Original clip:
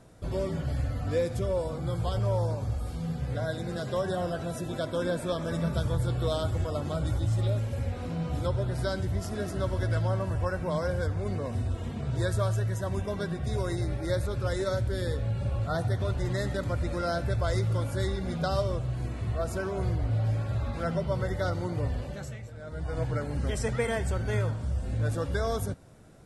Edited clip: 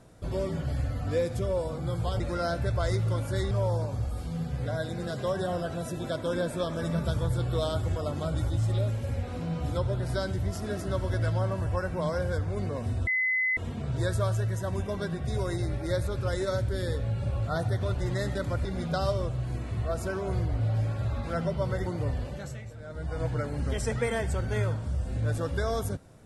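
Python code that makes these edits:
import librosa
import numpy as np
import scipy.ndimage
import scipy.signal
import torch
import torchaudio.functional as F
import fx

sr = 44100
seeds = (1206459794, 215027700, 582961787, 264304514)

y = fx.edit(x, sr, fx.insert_tone(at_s=11.76, length_s=0.5, hz=2030.0, db=-23.5),
    fx.move(start_s=16.84, length_s=1.31, to_s=2.2),
    fx.cut(start_s=21.36, length_s=0.27), tone=tone)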